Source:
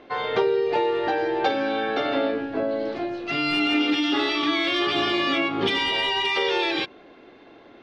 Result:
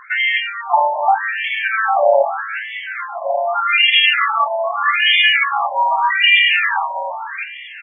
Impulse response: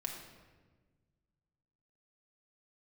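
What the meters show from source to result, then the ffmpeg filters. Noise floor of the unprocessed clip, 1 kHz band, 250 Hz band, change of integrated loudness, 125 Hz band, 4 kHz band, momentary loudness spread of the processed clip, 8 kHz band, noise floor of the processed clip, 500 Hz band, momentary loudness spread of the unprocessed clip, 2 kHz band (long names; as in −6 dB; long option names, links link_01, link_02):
−49 dBFS, +11.0 dB, below −40 dB, +8.5 dB, below −35 dB, +8.0 dB, 15 LU, can't be measured, −33 dBFS, +3.0 dB, 5 LU, +12.0 dB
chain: -filter_complex "[0:a]highpass=frequency=150:width=0.5412,highpass=frequency=150:width=1.3066,bandreject=frequency=60:width_type=h:width=6,bandreject=frequency=120:width_type=h:width=6,bandreject=frequency=180:width_type=h:width=6,bandreject=frequency=240:width_type=h:width=6,bandreject=frequency=300:width_type=h:width=6,areverse,acompressor=mode=upward:threshold=-38dB:ratio=2.5,areverse,asplit=2[link_01][link_02];[link_02]adelay=22,volume=-6.5dB[link_03];[link_01][link_03]amix=inputs=2:normalize=0,aecho=1:1:591|1182|1773:0.251|0.0527|0.0111,asplit=2[link_04][link_05];[1:a]atrim=start_sample=2205[link_06];[link_05][link_06]afir=irnorm=-1:irlink=0,volume=-18dB[link_07];[link_04][link_07]amix=inputs=2:normalize=0,alimiter=level_in=14.5dB:limit=-1dB:release=50:level=0:latency=1,afftfilt=real='re*between(b*sr/1024,730*pow(2500/730,0.5+0.5*sin(2*PI*0.82*pts/sr))/1.41,730*pow(2500/730,0.5+0.5*sin(2*PI*0.82*pts/sr))*1.41)':imag='im*between(b*sr/1024,730*pow(2500/730,0.5+0.5*sin(2*PI*0.82*pts/sr))/1.41,730*pow(2500/730,0.5+0.5*sin(2*PI*0.82*pts/sr))*1.41)':win_size=1024:overlap=0.75,volume=2dB"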